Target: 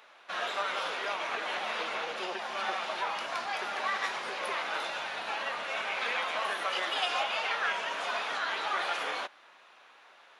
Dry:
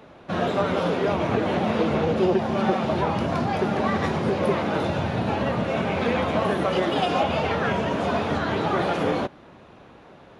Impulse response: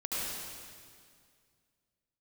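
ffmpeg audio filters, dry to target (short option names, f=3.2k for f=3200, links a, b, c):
-af "highpass=1.3k"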